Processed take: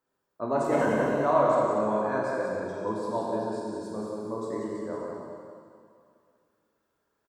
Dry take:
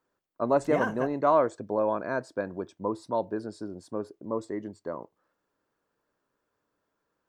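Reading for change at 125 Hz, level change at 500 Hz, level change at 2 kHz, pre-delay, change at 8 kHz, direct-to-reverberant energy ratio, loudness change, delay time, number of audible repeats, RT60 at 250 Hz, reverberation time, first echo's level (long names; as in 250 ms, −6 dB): +2.5 dB, +1.5 dB, +1.5 dB, 6 ms, can't be measured, −5.5 dB, +1.0 dB, 183 ms, 1, 2.3 s, 2.3 s, −5.0 dB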